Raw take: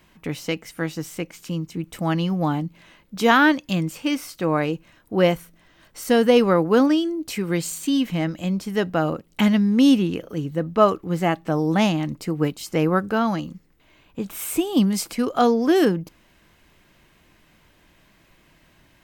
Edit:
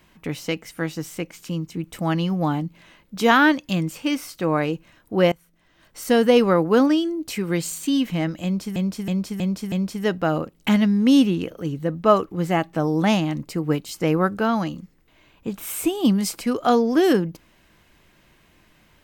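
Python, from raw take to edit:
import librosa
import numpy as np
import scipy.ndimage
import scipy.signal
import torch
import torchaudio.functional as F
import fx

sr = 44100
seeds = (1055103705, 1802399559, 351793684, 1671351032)

y = fx.edit(x, sr, fx.fade_in_from(start_s=5.32, length_s=0.71, floor_db=-23.5),
    fx.repeat(start_s=8.44, length_s=0.32, count=5), tone=tone)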